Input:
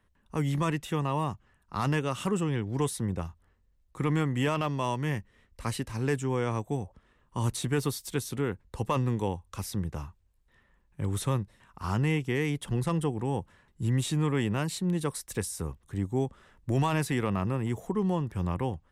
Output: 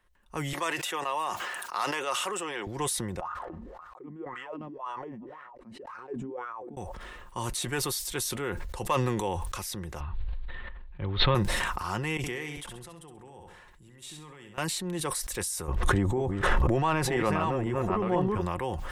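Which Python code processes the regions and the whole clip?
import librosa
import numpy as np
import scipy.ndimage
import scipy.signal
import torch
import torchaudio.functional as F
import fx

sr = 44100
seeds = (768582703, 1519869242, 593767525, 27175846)

y = fx.chain(x, sr, fx.highpass(hz=470.0, slope=12),
    fx.band_squash(depth_pct=40), at=(0.53, 2.67))
y = fx.chain(y, sr, fx.echo_filtered(ms=292, feedback_pct=34, hz=2000.0, wet_db=-23),
    fx.wah_lfo(hz=1.9, low_hz=210.0, high_hz=1400.0, q=9.5),
    fx.sustainer(db_per_s=60.0), at=(3.2, 6.77))
y = fx.chain(y, sr, fx.steep_lowpass(hz=4300.0, slope=72),
    fx.low_shelf(hz=130.0, db=11.5),
    fx.sustainer(db_per_s=22.0), at=(10.0, 11.35))
y = fx.chain(y, sr, fx.level_steps(step_db=23),
    fx.echo_feedback(ms=66, feedback_pct=33, wet_db=-8), at=(12.17, 14.58))
y = fx.chain(y, sr, fx.reverse_delay(ms=495, wet_db=-3.5),
    fx.lowpass(hz=1300.0, slope=6),
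    fx.env_flatten(amount_pct=100), at=(15.68, 18.41))
y = fx.peak_eq(y, sr, hz=160.0, db=-13.0, octaves=1.9)
y = y + 0.34 * np.pad(y, (int(5.6 * sr / 1000.0), 0))[:len(y)]
y = fx.sustainer(y, sr, db_per_s=22.0)
y = y * 10.0 ** (2.0 / 20.0)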